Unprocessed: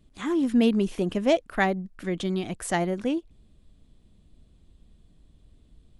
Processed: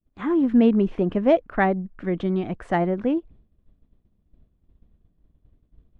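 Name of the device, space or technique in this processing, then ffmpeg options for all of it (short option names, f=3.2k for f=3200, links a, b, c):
hearing-loss simulation: -af "lowpass=1.7k,agate=range=-33dB:threshold=-46dB:ratio=3:detection=peak,volume=4dB"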